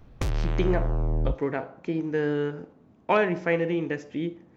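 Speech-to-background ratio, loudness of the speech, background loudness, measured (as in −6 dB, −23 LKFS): 2.0 dB, −28.0 LKFS, −30.0 LKFS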